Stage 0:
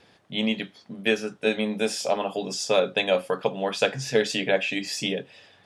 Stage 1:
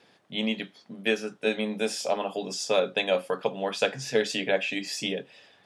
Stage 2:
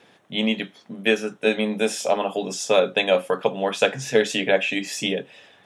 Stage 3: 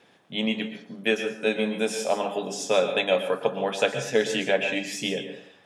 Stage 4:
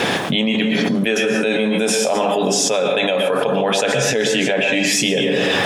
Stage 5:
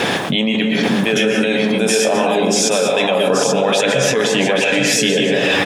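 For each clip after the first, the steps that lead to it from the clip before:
high-pass 150 Hz 12 dB/octave; trim -2.5 dB
peaking EQ 4.7 kHz -10.5 dB 0.25 oct; trim +6 dB
plate-style reverb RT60 0.54 s, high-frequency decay 0.6×, pre-delay 105 ms, DRR 7.5 dB; trim -4 dB
level flattener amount 100%
delay 832 ms -5 dB; trim +1 dB

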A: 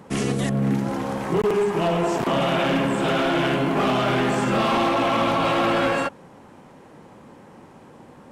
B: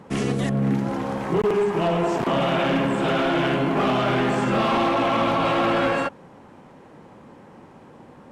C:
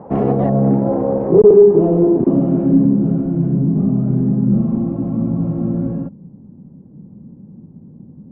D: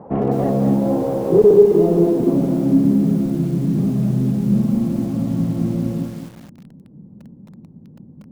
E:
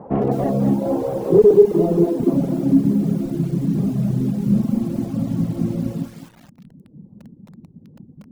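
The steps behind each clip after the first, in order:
treble shelf 6.2 kHz -8.5 dB
low-pass sweep 740 Hz -> 190 Hz, 0.40–3.36 s; trim +6.5 dB
bit-crushed delay 210 ms, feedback 35%, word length 6-bit, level -6 dB; trim -3 dB
reverb removal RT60 1 s; trim +1 dB

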